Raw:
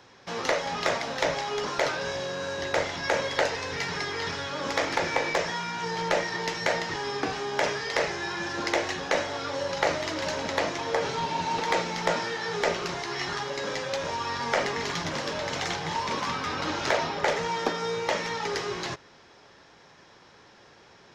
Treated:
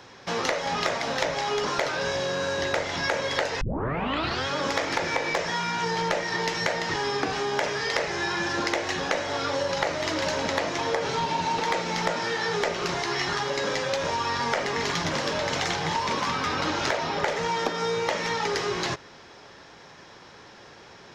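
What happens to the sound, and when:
0:03.61: tape start 0.86 s
whole clip: downward compressor, threshold −29 dBFS; level +6 dB

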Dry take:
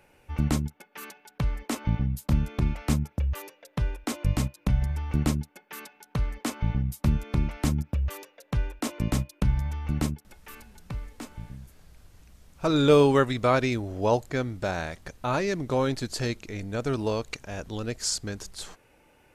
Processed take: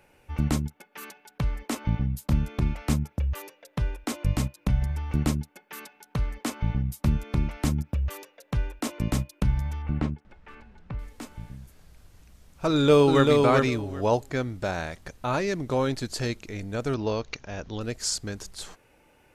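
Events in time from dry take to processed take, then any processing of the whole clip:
0:09.82–0:10.99: low-pass filter 2,400 Hz
0:12.68–0:13.30: delay throw 390 ms, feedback 15%, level −3 dB
0:16.94–0:17.81: Butterworth low-pass 6,500 Hz 72 dB per octave

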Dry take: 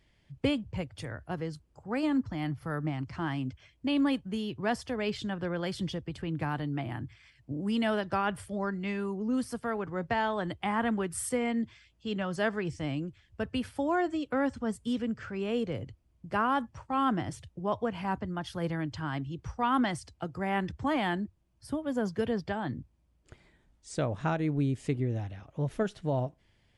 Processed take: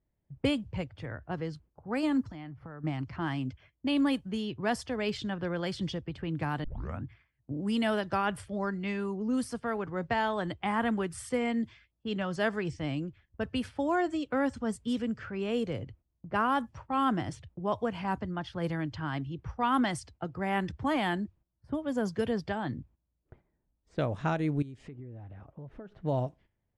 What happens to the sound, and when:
0:02.25–0:02.84: downward compressor 8 to 1, threshold −40 dBFS
0:06.64: tape start 0.40 s
0:24.62–0:25.92: downward compressor, threshold −42 dBFS
whole clip: noise gate −55 dBFS, range −12 dB; low-pass that shuts in the quiet parts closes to 920 Hz, open at −26.5 dBFS; high-shelf EQ 7,200 Hz +6.5 dB

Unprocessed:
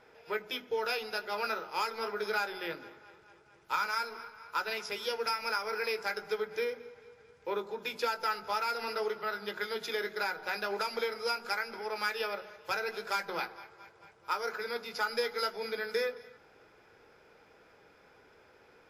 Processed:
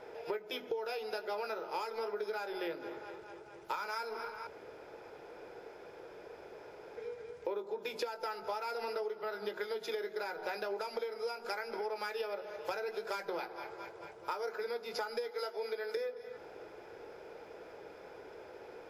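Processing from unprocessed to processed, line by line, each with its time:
0:04.47–0:06.97: fill with room tone
0:15.31–0:15.97: high-pass filter 330 Hz
whole clip: flat-topped bell 530 Hz +8.5 dB; notch filter 790 Hz, Q 23; downward compressor 10 to 1, threshold −39 dBFS; level +4 dB

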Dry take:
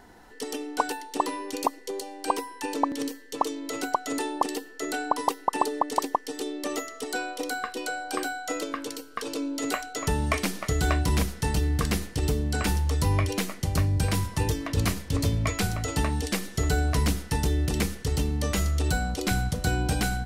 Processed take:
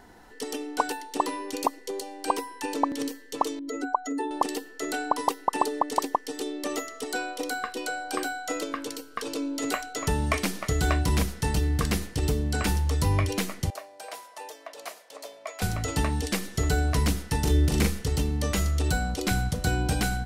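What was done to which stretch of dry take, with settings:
0:03.59–0:04.31: expanding power law on the bin magnitudes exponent 1.9
0:13.70–0:15.62: four-pole ladder high-pass 560 Hz, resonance 60%
0:17.41–0:18.08: double-tracking delay 41 ms −3 dB

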